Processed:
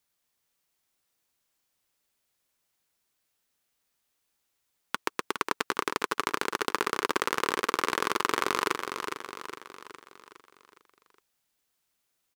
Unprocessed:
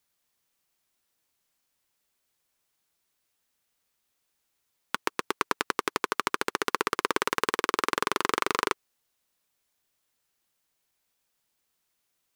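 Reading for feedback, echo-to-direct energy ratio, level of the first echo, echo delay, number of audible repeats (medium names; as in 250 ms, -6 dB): 50%, -5.5 dB, -7.0 dB, 412 ms, 5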